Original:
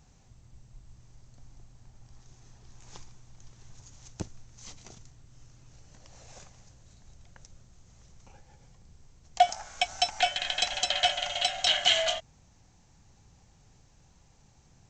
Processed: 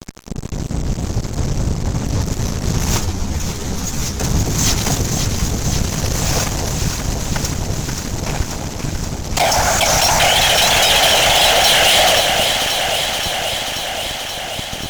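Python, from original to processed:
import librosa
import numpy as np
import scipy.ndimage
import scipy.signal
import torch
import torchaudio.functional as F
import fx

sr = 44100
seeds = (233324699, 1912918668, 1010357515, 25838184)

p1 = fx.over_compress(x, sr, threshold_db=-43.0, ratio=-1.0)
p2 = x + (p1 * librosa.db_to_amplitude(-1.0))
p3 = fx.whisperise(p2, sr, seeds[0])
p4 = fx.fuzz(p3, sr, gain_db=40.0, gate_db=-44.0)
p5 = fx.vibrato(p4, sr, rate_hz=3.1, depth_cents=83.0)
p6 = p5 + fx.echo_alternate(p5, sr, ms=265, hz=930.0, feedback_pct=87, wet_db=-4.5, dry=0)
p7 = fx.ensemble(p6, sr, at=(2.97, 4.23), fade=0.02)
y = p7 * librosa.db_to_amplitude(1.0)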